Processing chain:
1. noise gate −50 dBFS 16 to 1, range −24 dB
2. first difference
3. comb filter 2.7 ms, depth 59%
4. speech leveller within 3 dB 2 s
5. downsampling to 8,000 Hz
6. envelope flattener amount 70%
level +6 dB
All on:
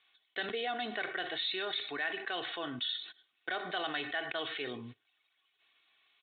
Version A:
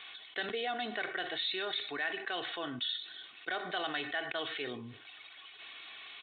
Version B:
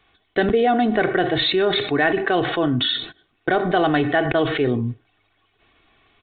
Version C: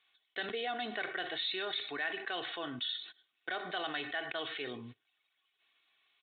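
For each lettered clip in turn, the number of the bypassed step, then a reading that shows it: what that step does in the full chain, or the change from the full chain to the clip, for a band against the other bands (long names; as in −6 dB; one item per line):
1, change in momentary loudness spread +6 LU
2, 125 Hz band +10.5 dB
4, change in integrated loudness −1.0 LU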